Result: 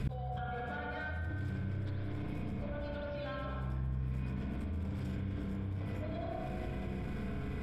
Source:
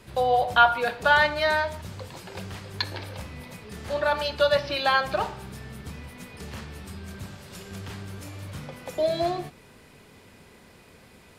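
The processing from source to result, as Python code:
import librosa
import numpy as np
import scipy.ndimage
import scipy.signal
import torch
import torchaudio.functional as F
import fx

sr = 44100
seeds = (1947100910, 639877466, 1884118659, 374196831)

y = fx.recorder_agc(x, sr, target_db=-11.0, rise_db_per_s=69.0, max_gain_db=30)
y = fx.notch(y, sr, hz=940.0, q=6.3)
y = fx.tremolo_random(y, sr, seeds[0], hz=3.5, depth_pct=55)
y = fx.stretch_vocoder_free(y, sr, factor=0.67)
y = fx.bass_treble(y, sr, bass_db=15, treble_db=-9)
y = 10.0 ** (-15.5 / 20.0) * np.tanh(y / 10.0 ** (-15.5 / 20.0))
y = fx.ripple_eq(y, sr, per_octave=1.7, db=6)
y = fx.echo_bbd(y, sr, ms=107, stages=1024, feedback_pct=64, wet_db=-5.5)
y = fx.rev_spring(y, sr, rt60_s=2.5, pass_ms=(31, 37), chirp_ms=60, drr_db=-3.5)
y = fx.gate_flip(y, sr, shuts_db=-23.0, range_db=-39)
y = fx.env_flatten(y, sr, amount_pct=70)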